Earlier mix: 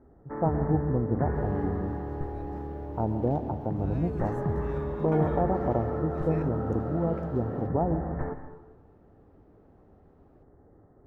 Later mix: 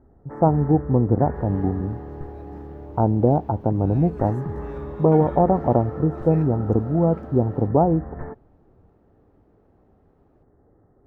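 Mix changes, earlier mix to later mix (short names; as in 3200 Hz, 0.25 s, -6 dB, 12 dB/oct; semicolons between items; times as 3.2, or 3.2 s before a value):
speech +10.5 dB; reverb: off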